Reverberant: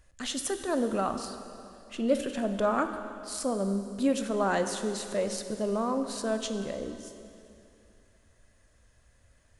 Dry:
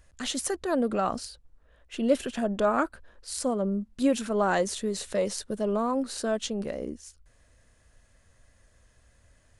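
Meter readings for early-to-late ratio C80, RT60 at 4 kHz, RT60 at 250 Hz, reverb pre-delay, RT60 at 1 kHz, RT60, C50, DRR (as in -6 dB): 9.5 dB, 2.5 s, 2.8 s, 7 ms, 2.8 s, 2.7 s, 8.5 dB, 7.5 dB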